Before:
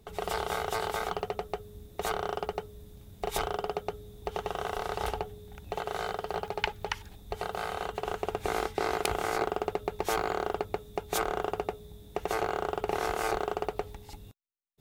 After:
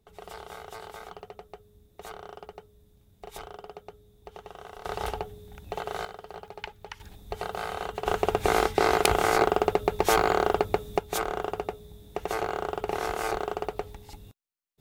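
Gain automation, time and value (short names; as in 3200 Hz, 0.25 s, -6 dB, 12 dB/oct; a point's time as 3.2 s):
-10.5 dB
from 4.85 s +0.5 dB
from 6.05 s -8.5 dB
from 7 s +1 dB
from 8.06 s +7.5 dB
from 10.99 s +0.5 dB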